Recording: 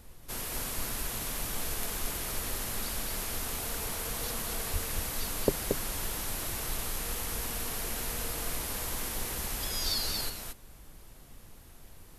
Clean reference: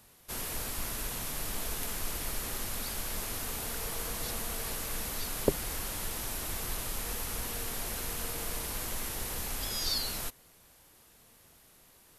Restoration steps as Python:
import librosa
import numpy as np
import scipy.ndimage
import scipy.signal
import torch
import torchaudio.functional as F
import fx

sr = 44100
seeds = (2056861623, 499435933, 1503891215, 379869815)

y = fx.fix_deplosive(x, sr, at_s=(4.72,))
y = fx.noise_reduce(y, sr, print_start_s=11.39, print_end_s=11.89, reduce_db=11.0)
y = fx.fix_echo_inverse(y, sr, delay_ms=228, level_db=-4.5)